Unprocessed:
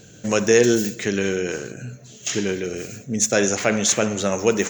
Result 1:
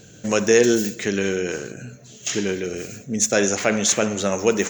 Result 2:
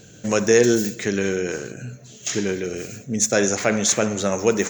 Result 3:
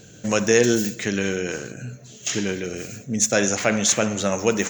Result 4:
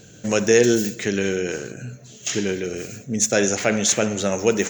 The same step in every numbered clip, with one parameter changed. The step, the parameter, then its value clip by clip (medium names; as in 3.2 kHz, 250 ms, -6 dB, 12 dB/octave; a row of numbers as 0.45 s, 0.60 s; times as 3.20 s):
dynamic bell, frequency: 120 Hz, 2.9 kHz, 400 Hz, 1.1 kHz